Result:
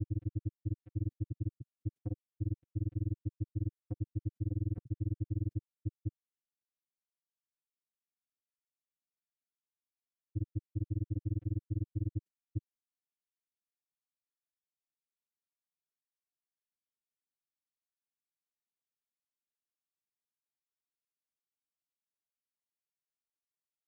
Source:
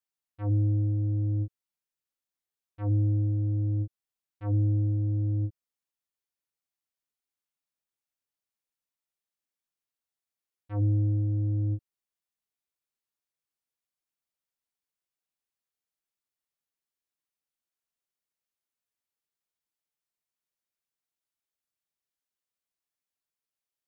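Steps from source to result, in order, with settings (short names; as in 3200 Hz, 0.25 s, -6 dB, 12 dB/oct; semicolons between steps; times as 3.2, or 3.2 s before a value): HPF 58 Hz 6 dB/oct; gate with hold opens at -27 dBFS; graphic EQ 125/250/500/1000 Hz +9/+12/+3/-12 dB; limiter -32 dBFS, peak gain reduction 20.5 dB; grains 44 ms, grains 20/s, spray 0.803 s, pitch spread up and down by 0 st; gain +6 dB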